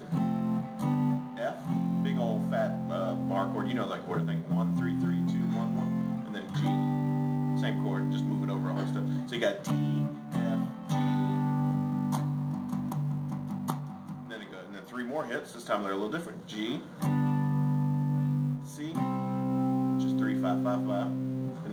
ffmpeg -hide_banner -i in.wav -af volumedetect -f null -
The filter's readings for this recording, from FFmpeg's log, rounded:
mean_volume: -30.2 dB
max_volume: -15.4 dB